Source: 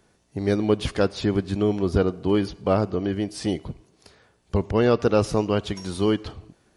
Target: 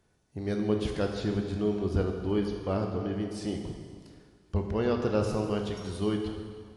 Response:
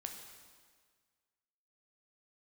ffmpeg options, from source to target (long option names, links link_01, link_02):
-filter_complex "[0:a]lowshelf=frequency=130:gain=6[link_01];[1:a]atrim=start_sample=2205,asetrate=38808,aresample=44100[link_02];[link_01][link_02]afir=irnorm=-1:irlink=0,volume=-6.5dB"